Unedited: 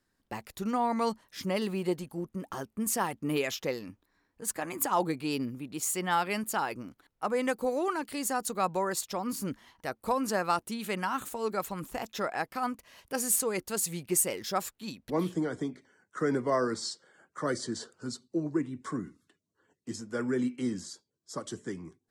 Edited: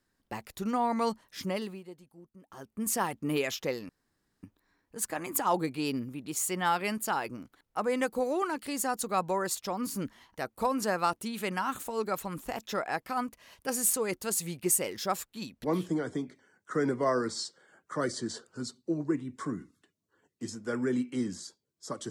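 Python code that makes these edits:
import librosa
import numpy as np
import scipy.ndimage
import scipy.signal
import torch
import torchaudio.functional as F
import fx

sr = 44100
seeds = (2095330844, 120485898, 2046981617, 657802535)

y = fx.edit(x, sr, fx.fade_down_up(start_s=1.42, length_s=1.48, db=-17.0, fade_s=0.42),
    fx.insert_room_tone(at_s=3.89, length_s=0.54), tone=tone)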